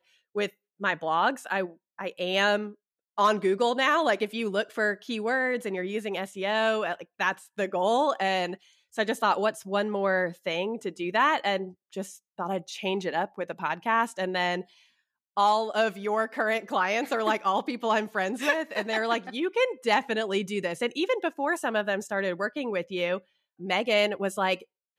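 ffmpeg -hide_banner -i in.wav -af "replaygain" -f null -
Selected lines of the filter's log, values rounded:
track_gain = +7.4 dB
track_peak = 0.226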